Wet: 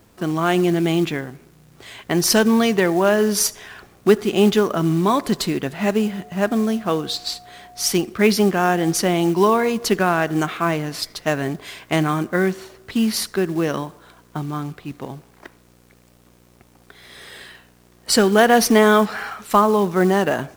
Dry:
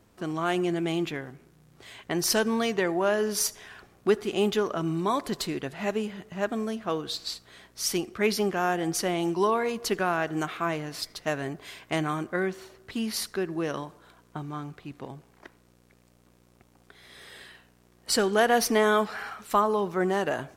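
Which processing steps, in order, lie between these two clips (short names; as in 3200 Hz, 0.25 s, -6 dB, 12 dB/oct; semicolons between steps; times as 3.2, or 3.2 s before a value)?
dynamic EQ 200 Hz, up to +5 dB, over -43 dBFS, Q 1.5; companded quantiser 6-bit; 6–7.9 whine 720 Hz -50 dBFS; gain +7.5 dB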